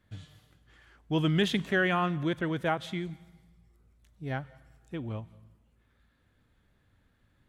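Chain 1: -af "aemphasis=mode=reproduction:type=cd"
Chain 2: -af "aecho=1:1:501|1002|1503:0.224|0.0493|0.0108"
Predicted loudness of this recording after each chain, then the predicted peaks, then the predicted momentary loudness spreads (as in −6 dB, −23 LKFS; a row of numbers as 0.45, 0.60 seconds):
−30.5, −30.5 LKFS; −15.0, −14.5 dBFS; 22, 23 LU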